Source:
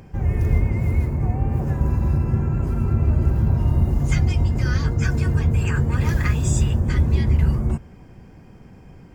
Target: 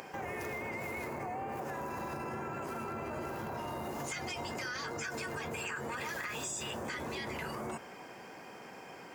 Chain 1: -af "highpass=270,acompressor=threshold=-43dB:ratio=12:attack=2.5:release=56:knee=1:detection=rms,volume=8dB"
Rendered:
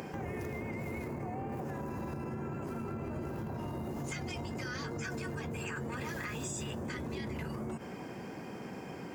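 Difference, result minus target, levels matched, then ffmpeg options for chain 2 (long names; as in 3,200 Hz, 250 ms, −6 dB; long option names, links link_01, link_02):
250 Hz band +5.0 dB
-af "highpass=600,acompressor=threshold=-43dB:ratio=12:attack=2.5:release=56:knee=1:detection=rms,volume=8dB"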